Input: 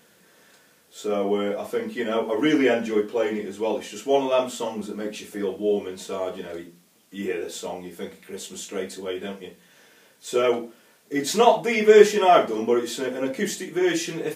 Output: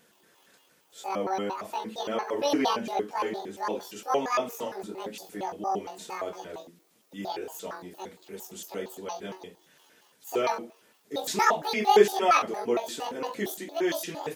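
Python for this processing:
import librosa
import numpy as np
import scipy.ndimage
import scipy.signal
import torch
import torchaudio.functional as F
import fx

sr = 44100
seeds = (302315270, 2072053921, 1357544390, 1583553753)

y = fx.pitch_trill(x, sr, semitones=11.0, every_ms=115)
y = y * librosa.db_to_amplitude(-5.5)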